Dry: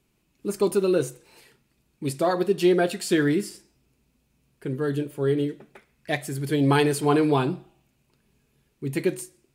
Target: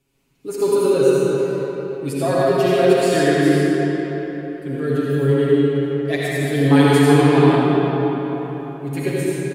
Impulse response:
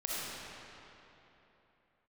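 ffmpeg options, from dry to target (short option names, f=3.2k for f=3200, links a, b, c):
-filter_complex "[0:a]aecho=1:1:7.3:0.84[a];[1:a]atrim=start_sample=2205,asetrate=33957,aresample=44100[b];[a][b]afir=irnorm=-1:irlink=0,volume=-2dB"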